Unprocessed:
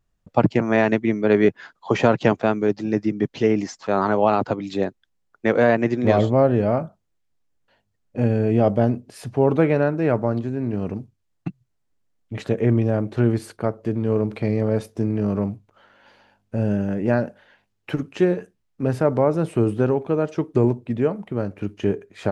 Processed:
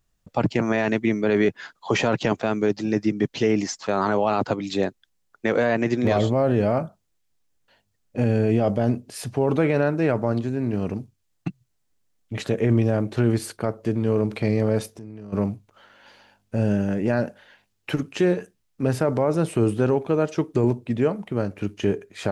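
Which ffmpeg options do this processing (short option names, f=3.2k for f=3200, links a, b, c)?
-filter_complex "[0:a]asplit=3[a][b][c];[a]afade=t=out:st=14.9:d=0.02[d];[b]acompressor=threshold=-44dB:ratio=2.5:attack=3.2:release=140:knee=1:detection=peak,afade=t=in:st=14.9:d=0.02,afade=t=out:st=15.32:d=0.02[e];[c]afade=t=in:st=15.32:d=0.02[f];[d][e][f]amix=inputs=3:normalize=0,highshelf=f=2.8k:g=8.5,alimiter=limit=-10.5dB:level=0:latency=1:release=16"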